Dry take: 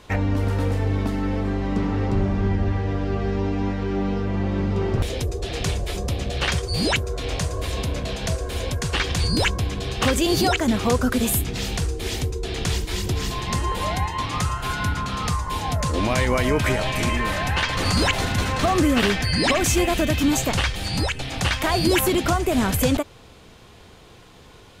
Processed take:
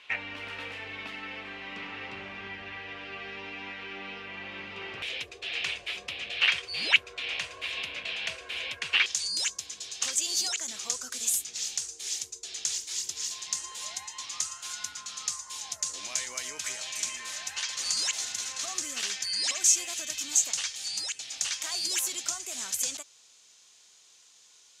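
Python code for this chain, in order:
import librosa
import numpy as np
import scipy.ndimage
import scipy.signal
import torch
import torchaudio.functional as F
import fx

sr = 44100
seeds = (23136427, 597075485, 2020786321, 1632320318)

y = fx.bandpass_q(x, sr, hz=fx.steps((0.0, 2600.0), (9.06, 6600.0)), q=3.1)
y = F.gain(torch.from_numpy(y), 6.0).numpy()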